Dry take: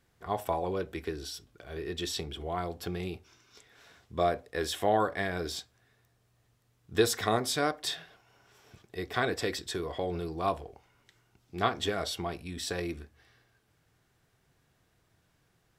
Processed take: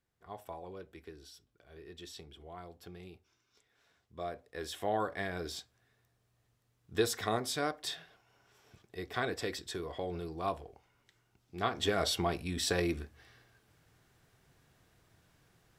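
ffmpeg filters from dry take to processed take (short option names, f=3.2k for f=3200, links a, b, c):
-af "volume=3dB,afade=t=in:st=4.14:d=1.08:silence=0.354813,afade=t=in:st=11.66:d=0.42:silence=0.398107"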